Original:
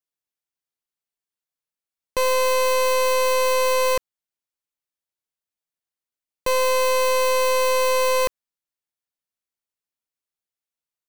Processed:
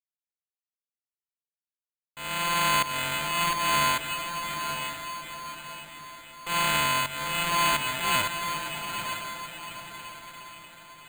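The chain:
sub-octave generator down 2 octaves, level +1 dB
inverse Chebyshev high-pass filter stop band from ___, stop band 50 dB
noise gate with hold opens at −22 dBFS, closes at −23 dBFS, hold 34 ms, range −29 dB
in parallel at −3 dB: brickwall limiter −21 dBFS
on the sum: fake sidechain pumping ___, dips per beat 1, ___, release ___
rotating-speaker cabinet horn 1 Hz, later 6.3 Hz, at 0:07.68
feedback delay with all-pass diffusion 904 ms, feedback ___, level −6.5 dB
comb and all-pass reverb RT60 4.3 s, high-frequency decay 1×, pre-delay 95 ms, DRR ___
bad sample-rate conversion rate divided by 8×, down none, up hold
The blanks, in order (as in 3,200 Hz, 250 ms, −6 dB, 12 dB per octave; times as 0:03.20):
370 Hz, 85 BPM, −17 dB, 321 ms, 44%, 13 dB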